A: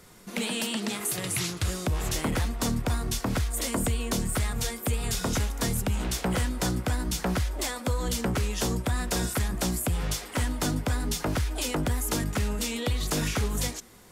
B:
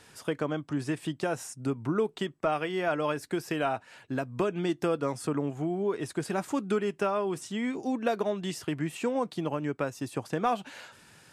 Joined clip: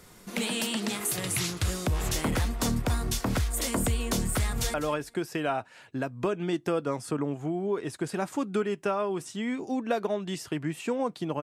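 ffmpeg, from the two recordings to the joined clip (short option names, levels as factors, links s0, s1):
-filter_complex "[0:a]apad=whole_dur=11.42,atrim=end=11.42,atrim=end=4.742[s0];[1:a]atrim=start=2.898:end=9.58[s1];[s0][s1]acrossfade=d=0.004:c1=hsin:c2=hsin,asplit=2[s2][s3];[s3]afade=t=in:st=4.37:d=0.01,afade=t=out:st=4.74:d=0.01,aecho=0:1:200|400:0.188365|0.037673[s4];[s2][s4]amix=inputs=2:normalize=0"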